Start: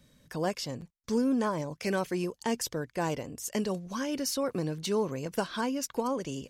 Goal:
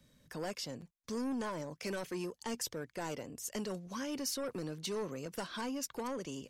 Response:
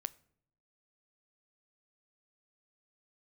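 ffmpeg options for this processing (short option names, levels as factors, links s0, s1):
-filter_complex "[0:a]acrossover=split=150|2500[s0][s1][s2];[s0]acompressor=threshold=0.002:ratio=6[s3];[s1]asoftclip=type=tanh:threshold=0.0355[s4];[s3][s4][s2]amix=inputs=3:normalize=0,volume=0.596"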